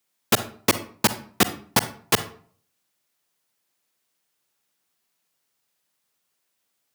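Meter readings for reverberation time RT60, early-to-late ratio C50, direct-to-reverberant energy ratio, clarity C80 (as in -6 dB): 0.50 s, 13.0 dB, 11.5 dB, 17.5 dB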